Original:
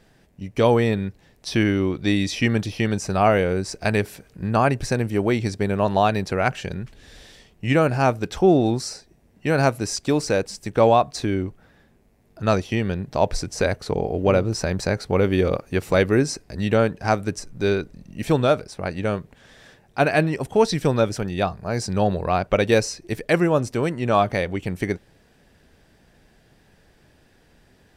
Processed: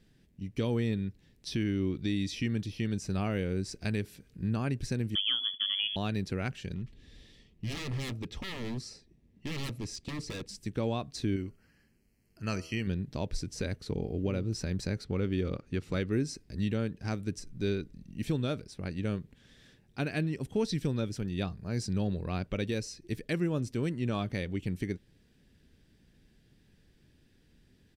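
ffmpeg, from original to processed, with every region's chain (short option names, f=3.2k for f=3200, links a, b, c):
-filter_complex "[0:a]asettb=1/sr,asplit=3[a][b][c];[a]atrim=end=5.154[d];[b]atrim=start=5.15:end=5.96,asetpts=PTS-STARTPTS,afade=t=in:d=0.004:c=qsin,afade=t=out:st=0.806:d=0.004:c=qsin,lowpass=f=3k:t=q:w=0.5098,lowpass=f=3k:t=q:w=0.6013,lowpass=f=3k:t=q:w=0.9,lowpass=f=3k:t=q:w=2.563,afreqshift=-3500,equalizer=f=260:w=2.9:g=8[e];[c]atrim=start=5.956[f];[d][e]acrossfade=d=0.004:c1=hsin:c2=qsin[g];[g][f]acrossfade=d=0.004:c1=qsin:c2=hsin,asettb=1/sr,asplit=3[h][i][j];[h]atrim=end=6.744[k];[i]atrim=start=6.74:end=10.49,asetpts=PTS-STARTPTS,afade=t=in:d=0.004:c=qsin,afade=t=out:st=3.746:d=0.004:c=qsin,highshelf=f=5.7k:g=-10,aeval=exprs='0.0794*(abs(mod(val(0)/0.0794+3,4)-2)-1)':c=same,asuperstop=centerf=1500:order=4:qfactor=6.9[l];[j]atrim=start=10.486[m];[k][l]acrossfade=d=0.004:c1=hsin:c2=qsin[n];[n][m]acrossfade=d=0.004:c1=qsin:c2=hsin,asettb=1/sr,asplit=3[o][p][q];[o]atrim=end=11.364[r];[p]atrim=start=11.36:end=12.87,asetpts=PTS-STARTPTS,afade=t=in:d=0.004:c=qsin,afade=t=out:st=1.506:d=0.004:c=qsin,asuperstop=centerf=3600:order=8:qfactor=4,tiltshelf=f=840:g=-5,bandreject=f=80.71:t=h:w=4,bandreject=f=161.42:t=h:w=4,bandreject=f=242.13:t=h:w=4,bandreject=f=322.84:t=h:w=4,bandreject=f=403.55:t=h:w=4,bandreject=f=484.26:t=h:w=4,bandreject=f=564.97:t=h:w=4,bandreject=f=645.68:t=h:w=4,bandreject=f=726.39:t=h:w=4,bandreject=f=807.1:t=h:w=4,bandreject=f=887.81:t=h:w=4,bandreject=f=968.52:t=h:w=4,bandreject=f=1.04923k:t=h:w=4,bandreject=f=1.12994k:t=h:w=4,bandreject=f=1.21065k:t=h:w=4,bandreject=f=1.29136k:t=h:w=4,bandreject=f=1.37207k:t=h:w=4,bandreject=f=1.45278k:t=h:w=4[s];[q]atrim=start=12.866[t];[r][s]acrossfade=d=0.004:c1=hsin:c2=qsin[u];[u][t]acrossfade=d=0.004:c1=qsin:c2=hsin,asettb=1/sr,asplit=3[v][w][x];[v]atrim=end=15.044[y];[w]atrim=start=15.04:end=16.12,asetpts=PTS-STARTPTS,afade=t=in:d=0.004:c=qsin,afade=t=out:st=1.076:d=0.004:c=qsin,equalizer=f=1.3k:w=4.4:g=5,adynamicsmooth=sensitivity=5.5:basefreq=7k[z];[x]atrim=start=16.116[aa];[y][z]acrossfade=d=0.004:c1=hsin:c2=qsin[ab];[ab][aa]acrossfade=d=0.004:c1=qsin:c2=hsin,firequalizer=gain_entry='entry(260,0);entry(680,-15);entry(1800,-7);entry(3400,-2);entry(6500,-5)':delay=0.05:min_phase=1,alimiter=limit=-14dB:level=0:latency=1:release=385,volume=-5.5dB"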